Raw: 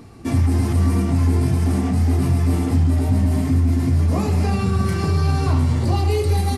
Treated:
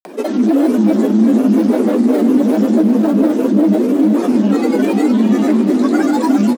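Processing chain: bass shelf 350 Hz +5 dB; upward compressor, threshold -28 dBFS; in parallel at -3.5 dB: overload inside the chain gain 14 dB; on the sum: granulator, pitch spread up and down by 12 st; frequency shift +160 Hz; on a send: feedback delay 357 ms, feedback 60%, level -10 dB; on the sum: trim -2 dB

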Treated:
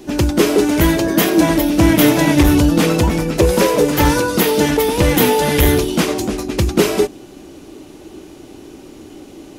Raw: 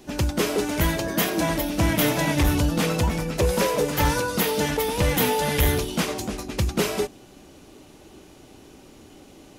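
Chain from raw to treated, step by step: peaking EQ 330 Hz +8 dB 0.68 oct; trim +6.5 dB

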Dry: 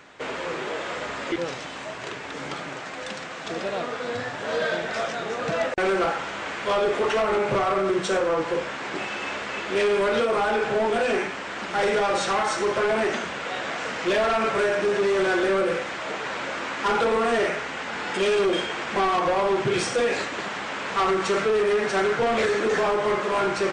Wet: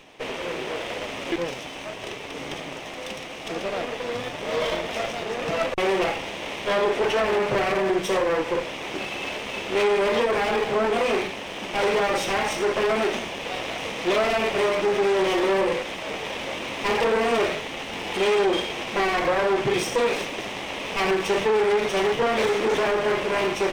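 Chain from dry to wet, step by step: comb filter that takes the minimum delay 0.34 ms; tone controls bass -4 dB, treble -3 dB; trim +2 dB

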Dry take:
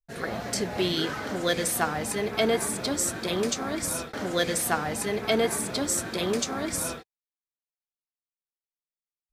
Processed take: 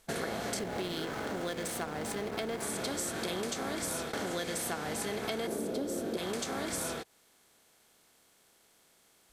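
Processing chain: spectral levelling over time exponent 0.6; 5.47–6.17 s: graphic EQ 125/250/500/1000/2000/4000/8000 Hz -4/+8/+8/-6/-7/-3/-6 dB; compression 6:1, threshold -33 dBFS, peak gain reduction 16 dB; 0.59–2.63 s: hysteresis with a dead band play -36 dBFS

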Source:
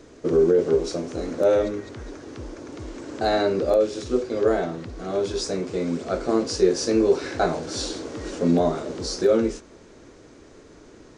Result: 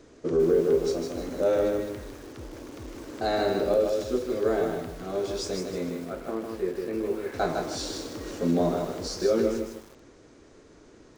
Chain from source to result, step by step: 5.89–7.34 s: four-pole ladder low-pass 3 kHz, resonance 25%; bit-crushed delay 155 ms, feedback 35%, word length 7-bit, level -4 dB; trim -5 dB

